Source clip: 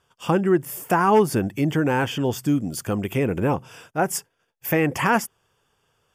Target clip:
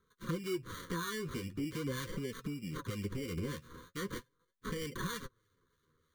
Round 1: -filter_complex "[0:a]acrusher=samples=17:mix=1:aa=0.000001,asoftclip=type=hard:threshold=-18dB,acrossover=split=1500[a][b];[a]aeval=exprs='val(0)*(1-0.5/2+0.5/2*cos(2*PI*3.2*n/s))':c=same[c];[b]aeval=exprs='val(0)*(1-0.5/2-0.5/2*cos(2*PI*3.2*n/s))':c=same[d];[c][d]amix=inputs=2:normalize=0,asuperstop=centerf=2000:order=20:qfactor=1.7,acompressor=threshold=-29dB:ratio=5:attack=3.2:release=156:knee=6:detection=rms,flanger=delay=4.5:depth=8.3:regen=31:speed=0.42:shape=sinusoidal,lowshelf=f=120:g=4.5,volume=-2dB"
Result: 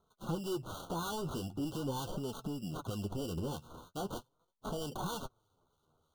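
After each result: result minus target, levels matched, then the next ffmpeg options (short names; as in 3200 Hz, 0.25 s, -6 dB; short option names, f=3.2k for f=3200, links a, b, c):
hard clip: distortion +22 dB; 2000 Hz band -9.5 dB
-filter_complex "[0:a]acrusher=samples=17:mix=1:aa=0.000001,asoftclip=type=hard:threshold=-9.5dB,acrossover=split=1500[a][b];[a]aeval=exprs='val(0)*(1-0.5/2+0.5/2*cos(2*PI*3.2*n/s))':c=same[c];[b]aeval=exprs='val(0)*(1-0.5/2-0.5/2*cos(2*PI*3.2*n/s))':c=same[d];[c][d]amix=inputs=2:normalize=0,asuperstop=centerf=2000:order=20:qfactor=1.7,acompressor=threshold=-29dB:ratio=5:attack=3.2:release=156:knee=6:detection=rms,flanger=delay=4.5:depth=8.3:regen=31:speed=0.42:shape=sinusoidal,lowshelf=f=120:g=4.5,volume=-2dB"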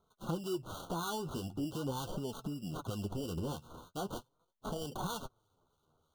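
2000 Hz band -9.0 dB
-filter_complex "[0:a]acrusher=samples=17:mix=1:aa=0.000001,asoftclip=type=hard:threshold=-9.5dB,acrossover=split=1500[a][b];[a]aeval=exprs='val(0)*(1-0.5/2+0.5/2*cos(2*PI*3.2*n/s))':c=same[c];[b]aeval=exprs='val(0)*(1-0.5/2-0.5/2*cos(2*PI*3.2*n/s))':c=same[d];[c][d]amix=inputs=2:normalize=0,asuperstop=centerf=730:order=20:qfactor=1.7,acompressor=threshold=-29dB:ratio=5:attack=3.2:release=156:knee=6:detection=rms,flanger=delay=4.5:depth=8.3:regen=31:speed=0.42:shape=sinusoidal,lowshelf=f=120:g=4.5,volume=-2dB"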